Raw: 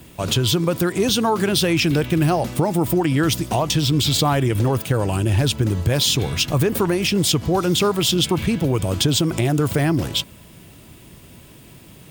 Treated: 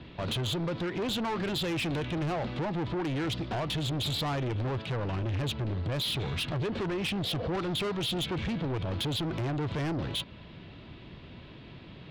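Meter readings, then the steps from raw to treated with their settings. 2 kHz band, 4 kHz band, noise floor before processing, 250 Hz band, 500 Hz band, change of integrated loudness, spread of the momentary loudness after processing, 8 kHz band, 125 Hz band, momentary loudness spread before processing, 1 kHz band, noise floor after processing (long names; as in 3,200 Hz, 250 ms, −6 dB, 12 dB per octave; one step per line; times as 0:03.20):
−10.5 dB, −11.5 dB, −45 dBFS, −12.5 dB, −12.5 dB, −12.5 dB, 18 LU, −20.5 dB, −12.0 dB, 3 LU, −11.5 dB, −48 dBFS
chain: Chebyshev low-pass filter 4,100 Hz, order 4
healed spectral selection 0:07.15–0:07.46, 430–930 Hz both
in parallel at −3 dB: downward compressor, threshold −28 dBFS, peak gain reduction 13 dB
on the sum: soft clipping −22.5 dBFS, distortion −8 dB
level −6 dB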